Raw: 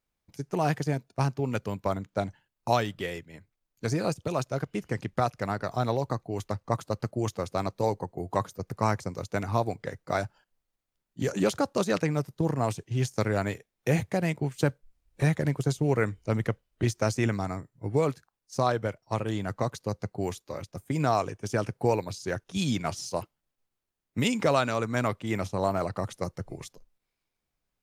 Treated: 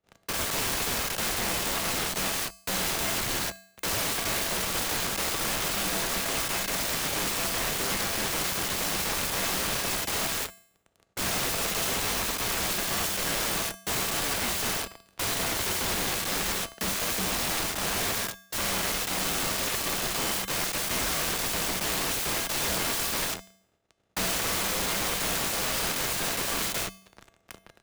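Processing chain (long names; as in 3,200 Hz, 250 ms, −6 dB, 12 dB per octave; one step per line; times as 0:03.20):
compressor on every frequency bin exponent 0.2
hum removal 202.9 Hz, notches 8
noise gate −24 dBFS, range −35 dB
notch filter 1,100 Hz, Q 7.1
leveller curve on the samples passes 5
wrap-around overflow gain 12 dB
tuned comb filter 240 Hz, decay 0.6 s, harmonics odd, mix 70%
frequency shifter −49 Hz
level −2.5 dB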